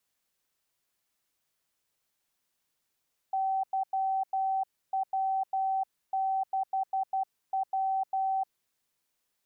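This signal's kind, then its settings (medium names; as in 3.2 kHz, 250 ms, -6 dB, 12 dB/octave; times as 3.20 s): Morse "YW6W" 12 wpm 769 Hz -26 dBFS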